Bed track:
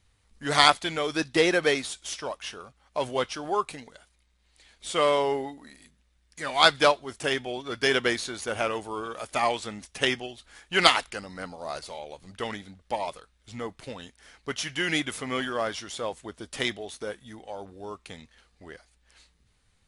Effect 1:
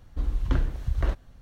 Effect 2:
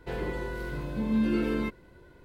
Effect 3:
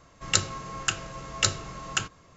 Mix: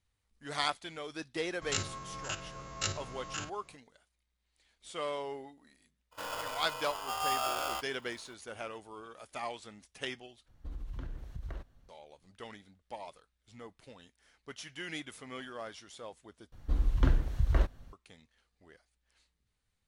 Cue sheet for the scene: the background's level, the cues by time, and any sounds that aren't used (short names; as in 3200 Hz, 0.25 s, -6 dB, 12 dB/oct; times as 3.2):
bed track -14 dB
1.41 add 3 -6 dB + stepped spectrum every 50 ms
6.11 add 2 -7 dB, fades 0.02 s + polarity switched at an audio rate 990 Hz
10.48 replace with 1 -11.5 dB + compressor, threshold -24 dBFS
16.52 replace with 1 -1.5 dB